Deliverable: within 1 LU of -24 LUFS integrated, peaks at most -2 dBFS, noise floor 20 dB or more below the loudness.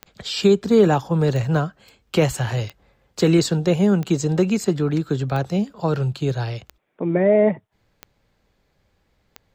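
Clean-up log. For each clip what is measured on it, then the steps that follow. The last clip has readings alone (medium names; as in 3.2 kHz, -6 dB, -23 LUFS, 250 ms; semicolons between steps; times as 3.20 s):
clicks found 8; loudness -20.5 LUFS; peak level -5.0 dBFS; loudness target -24.0 LUFS
-> de-click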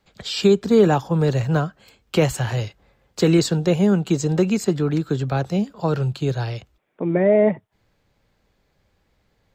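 clicks found 0; loudness -20.5 LUFS; peak level -5.0 dBFS; loudness target -24.0 LUFS
-> trim -3.5 dB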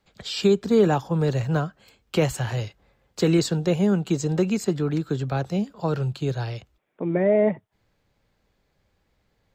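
loudness -24.0 LUFS; peak level -8.5 dBFS; noise floor -71 dBFS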